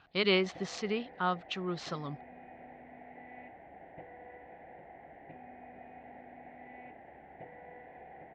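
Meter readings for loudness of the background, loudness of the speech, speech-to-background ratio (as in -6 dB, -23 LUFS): -51.5 LUFS, -33.0 LUFS, 18.5 dB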